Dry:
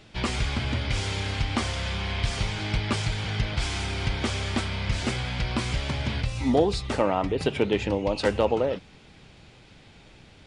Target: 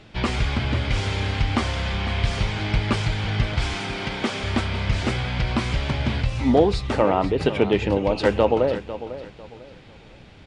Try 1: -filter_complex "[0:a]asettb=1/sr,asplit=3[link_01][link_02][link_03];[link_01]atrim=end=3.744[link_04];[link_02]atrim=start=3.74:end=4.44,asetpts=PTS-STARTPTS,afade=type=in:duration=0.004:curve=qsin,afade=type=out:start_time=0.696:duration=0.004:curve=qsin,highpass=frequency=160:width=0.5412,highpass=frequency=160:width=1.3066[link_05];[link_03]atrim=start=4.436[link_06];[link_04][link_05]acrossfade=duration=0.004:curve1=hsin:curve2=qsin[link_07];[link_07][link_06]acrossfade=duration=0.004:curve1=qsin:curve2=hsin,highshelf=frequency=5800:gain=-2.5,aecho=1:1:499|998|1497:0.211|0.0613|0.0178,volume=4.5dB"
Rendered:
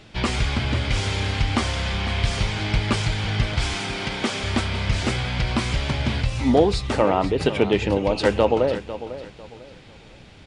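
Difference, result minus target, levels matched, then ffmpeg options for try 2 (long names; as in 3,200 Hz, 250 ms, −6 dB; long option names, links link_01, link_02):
8,000 Hz band +5.0 dB
-filter_complex "[0:a]asettb=1/sr,asplit=3[link_01][link_02][link_03];[link_01]atrim=end=3.744[link_04];[link_02]atrim=start=3.74:end=4.44,asetpts=PTS-STARTPTS,afade=type=in:duration=0.004:curve=qsin,afade=type=out:start_time=0.696:duration=0.004:curve=qsin,highpass=frequency=160:width=0.5412,highpass=frequency=160:width=1.3066[link_05];[link_03]atrim=start=4.436[link_06];[link_04][link_05]acrossfade=duration=0.004:curve1=hsin:curve2=qsin[link_07];[link_07][link_06]acrossfade=duration=0.004:curve1=qsin:curve2=hsin,highshelf=frequency=5800:gain=-12,aecho=1:1:499|998|1497:0.211|0.0613|0.0178,volume=4.5dB"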